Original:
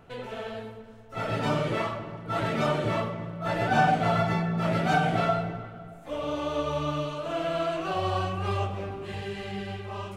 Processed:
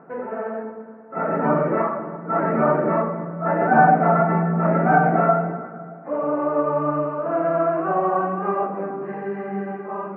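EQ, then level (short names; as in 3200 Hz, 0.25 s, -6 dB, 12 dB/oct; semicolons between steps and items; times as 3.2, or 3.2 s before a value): brick-wall FIR high-pass 150 Hz; inverse Chebyshev low-pass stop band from 3200 Hz, stop band 40 dB; +8.5 dB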